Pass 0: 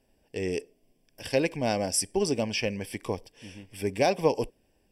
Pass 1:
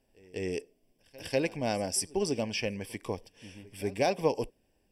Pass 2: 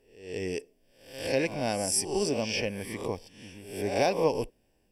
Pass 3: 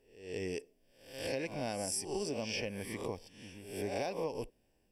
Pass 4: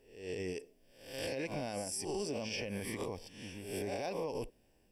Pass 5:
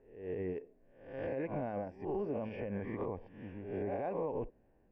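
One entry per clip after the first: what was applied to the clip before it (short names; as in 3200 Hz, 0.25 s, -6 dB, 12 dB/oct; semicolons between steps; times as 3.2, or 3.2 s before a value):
pre-echo 0.195 s -23 dB; gain -3.5 dB
spectral swells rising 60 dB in 0.60 s
compressor 6:1, threshold -29 dBFS, peak gain reduction 10 dB; gain -4 dB
limiter -33 dBFS, peak gain reduction 9.5 dB; gain +4 dB
LPF 1700 Hz 24 dB/oct; gain +1.5 dB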